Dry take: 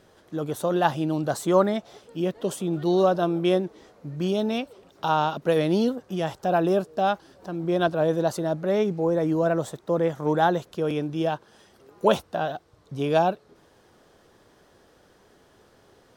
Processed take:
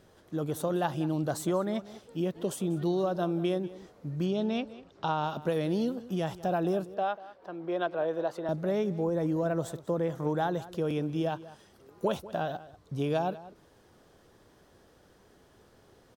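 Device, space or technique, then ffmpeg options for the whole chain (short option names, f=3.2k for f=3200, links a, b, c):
ASMR close-microphone chain: -filter_complex "[0:a]asettb=1/sr,asplit=3[a][b][c];[a]atrim=end=4.264[d];[b]atrim=start=4.26:end=5.24,asetpts=PTS-STARTPTS,afade=t=in:d=0.004:c=qsin,afade=t=out:st=0.976:d=0.004:c=qsin,lowpass=5.3k[e];[c]atrim=start=5.236[f];[d][e]acrossfade=d=0.004:c1=hsin:c2=qsin[g];[g][f]acrossfade=d=0.004:c1=qsin:c2=hsin,asettb=1/sr,asplit=3[h][i][j];[h]atrim=end=6.944[k];[i]atrim=start=6.94:end=8.49,asetpts=PTS-STARTPTS,afade=t=in:d=0.004:c=qsin,afade=t=out:st=1.546:d=0.004:c=qsin,acrossover=split=360 3600:gain=0.141 1 0.141[l][m][n];[l][m][n]amix=inputs=3:normalize=0[o];[j]atrim=start=8.486[p];[k][o]acrossfade=d=0.004:c1=hsin:c2=qsin[q];[q][p]acrossfade=d=0.004:c1=qsin:c2=hsin,lowshelf=f=240:g=5.5,acompressor=threshold=-21dB:ratio=5,highshelf=f=10k:g=4.5,asplit=2[r][s];[s]adelay=192.4,volume=-17dB,highshelf=f=4k:g=-4.33[t];[r][t]amix=inputs=2:normalize=0,volume=-4.5dB"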